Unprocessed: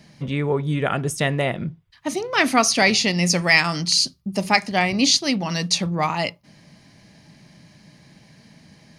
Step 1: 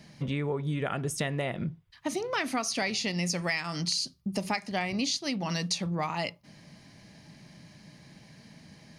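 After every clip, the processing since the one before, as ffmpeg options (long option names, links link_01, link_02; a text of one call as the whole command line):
ffmpeg -i in.wav -af "acompressor=threshold=-25dB:ratio=6,volume=-2.5dB" out.wav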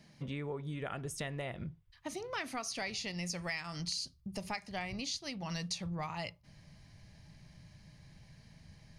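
ffmpeg -i in.wav -af "asubboost=boost=10.5:cutoff=77,volume=-8dB" out.wav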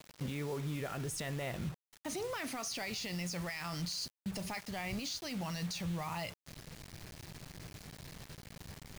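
ffmpeg -i in.wav -af "alimiter=level_in=12dB:limit=-24dB:level=0:latency=1:release=17,volume=-12dB,acrusher=bits=8:mix=0:aa=0.000001,volume=5dB" out.wav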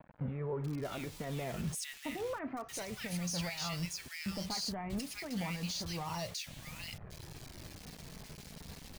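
ffmpeg -i in.wav -filter_complex "[0:a]flanger=delay=1.2:depth=3.5:regen=-43:speed=0.3:shape=sinusoidal,acrossover=split=1700[link_01][link_02];[link_02]adelay=640[link_03];[link_01][link_03]amix=inputs=2:normalize=0,volume=5dB" out.wav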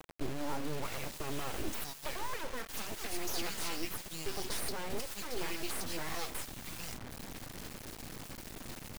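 ffmpeg -i in.wav -af "aeval=exprs='abs(val(0))':channel_layout=same,acrusher=bits=5:dc=4:mix=0:aa=0.000001,volume=3dB" out.wav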